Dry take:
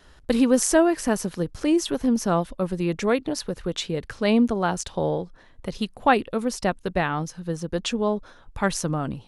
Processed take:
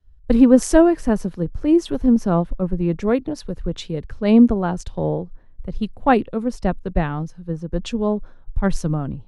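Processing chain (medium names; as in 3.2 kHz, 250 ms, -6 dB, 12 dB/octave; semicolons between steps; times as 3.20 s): tilt EQ -3 dB/octave; three bands expanded up and down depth 70%; trim -1 dB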